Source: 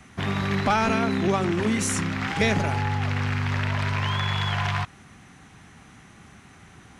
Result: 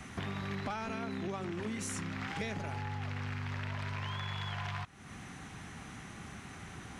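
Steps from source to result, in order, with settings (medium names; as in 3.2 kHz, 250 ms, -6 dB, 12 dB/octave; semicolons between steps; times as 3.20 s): compression 4:1, threshold -41 dBFS, peak gain reduction 19.5 dB; trim +2 dB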